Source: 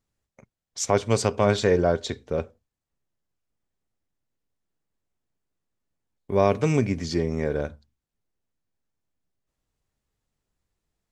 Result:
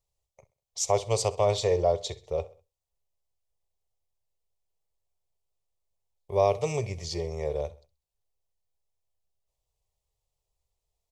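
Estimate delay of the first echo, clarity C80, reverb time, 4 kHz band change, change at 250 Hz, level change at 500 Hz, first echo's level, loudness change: 65 ms, no reverb audible, no reverb audible, −1.5 dB, −14.5 dB, −3.0 dB, −20.0 dB, −4.0 dB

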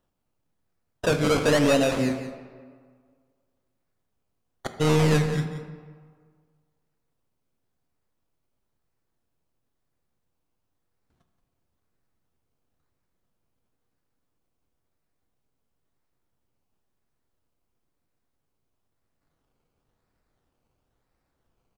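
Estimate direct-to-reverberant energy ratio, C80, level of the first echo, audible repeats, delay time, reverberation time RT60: 5.5 dB, 8.0 dB, −12.0 dB, 1, 177 ms, 1.8 s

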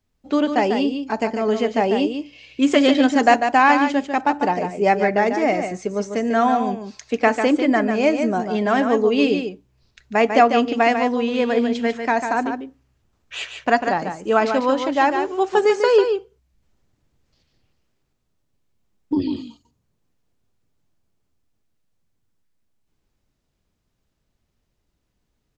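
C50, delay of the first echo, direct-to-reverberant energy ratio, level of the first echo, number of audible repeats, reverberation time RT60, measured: no reverb audible, 146 ms, no reverb audible, −7.0 dB, 1, no reverb audible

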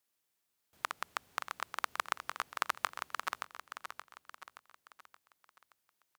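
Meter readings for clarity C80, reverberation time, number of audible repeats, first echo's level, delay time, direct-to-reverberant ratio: no reverb audible, no reverb audible, 5, −8.0 dB, 574 ms, no reverb audible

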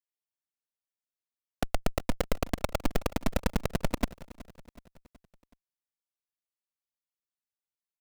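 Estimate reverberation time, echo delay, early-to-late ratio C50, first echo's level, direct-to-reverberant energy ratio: no reverb audible, 373 ms, no reverb audible, −19.0 dB, no reverb audible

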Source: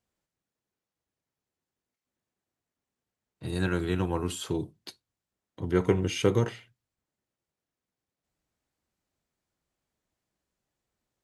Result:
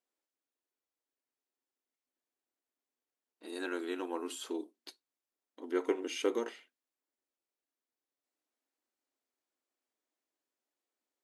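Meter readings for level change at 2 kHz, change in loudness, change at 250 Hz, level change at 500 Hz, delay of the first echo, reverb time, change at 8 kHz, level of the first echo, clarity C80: −6.5 dB, −8.0 dB, −8.5 dB, −6.5 dB, no echo audible, no reverb audible, −6.5 dB, no echo audible, no reverb audible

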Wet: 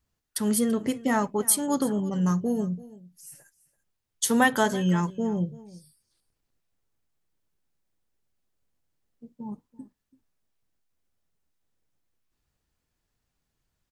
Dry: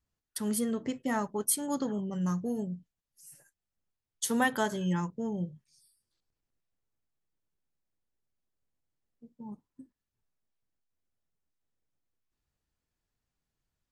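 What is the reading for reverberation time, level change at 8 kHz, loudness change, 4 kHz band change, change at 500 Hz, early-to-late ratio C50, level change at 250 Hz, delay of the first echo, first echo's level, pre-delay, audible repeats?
no reverb audible, +6.5 dB, +6.5 dB, +6.5 dB, +6.5 dB, no reverb audible, +6.5 dB, 335 ms, −19.5 dB, no reverb audible, 1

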